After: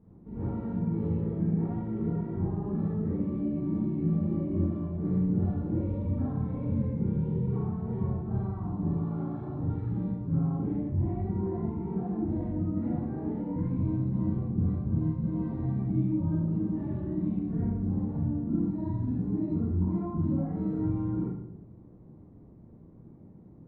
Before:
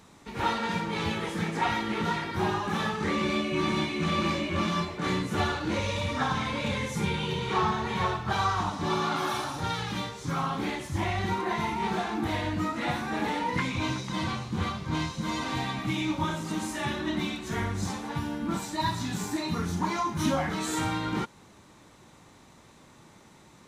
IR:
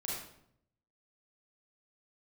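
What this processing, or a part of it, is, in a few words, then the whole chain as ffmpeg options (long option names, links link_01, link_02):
television next door: -filter_complex "[0:a]acompressor=threshold=-29dB:ratio=6,lowpass=290[link_01];[1:a]atrim=start_sample=2205[link_02];[link_01][link_02]afir=irnorm=-1:irlink=0,volume=4.5dB"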